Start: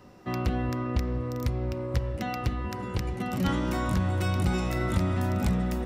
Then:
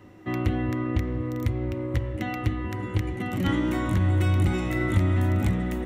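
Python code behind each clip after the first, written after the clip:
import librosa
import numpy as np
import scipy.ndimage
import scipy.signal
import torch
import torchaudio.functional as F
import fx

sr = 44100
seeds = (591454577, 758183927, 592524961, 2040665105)

y = fx.graphic_eq_31(x, sr, hz=(100, 315, 2000, 3150, 5000), db=(11, 11, 8, 4, -9))
y = y * 10.0 ** (-1.5 / 20.0)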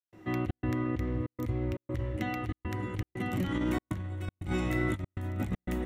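y = fx.step_gate(x, sr, bpm=119, pattern='.xxx.xxxxx', floor_db=-60.0, edge_ms=4.5)
y = fx.over_compress(y, sr, threshold_db=-25.0, ratio=-0.5)
y = y * 10.0 ** (-5.0 / 20.0)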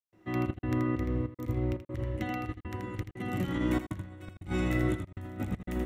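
y = x + 10.0 ** (-6.0 / 20.0) * np.pad(x, (int(81 * sr / 1000.0), 0))[:len(x)]
y = fx.upward_expand(y, sr, threshold_db=-43.0, expansion=1.5)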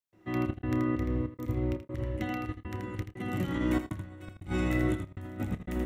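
y = fx.doubler(x, sr, ms=29.0, db=-14.0)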